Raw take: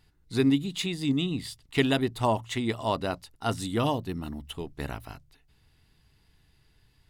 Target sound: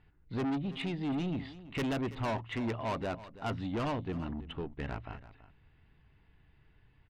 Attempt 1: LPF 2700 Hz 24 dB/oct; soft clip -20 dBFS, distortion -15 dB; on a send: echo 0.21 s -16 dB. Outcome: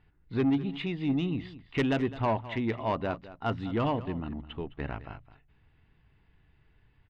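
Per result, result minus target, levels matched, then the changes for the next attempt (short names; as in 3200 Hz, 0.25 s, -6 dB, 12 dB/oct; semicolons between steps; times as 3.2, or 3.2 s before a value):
echo 0.121 s early; soft clip: distortion -9 dB
change: echo 0.331 s -16 dB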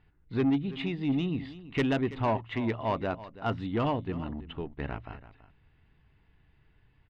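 soft clip: distortion -9 dB
change: soft clip -30 dBFS, distortion -6 dB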